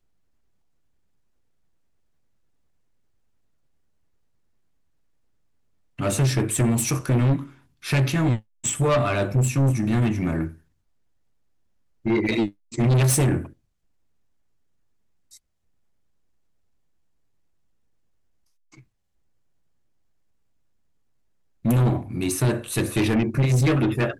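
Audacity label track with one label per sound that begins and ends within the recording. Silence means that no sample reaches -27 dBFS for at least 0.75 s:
5.990000	10.480000	sound
12.060000	13.420000	sound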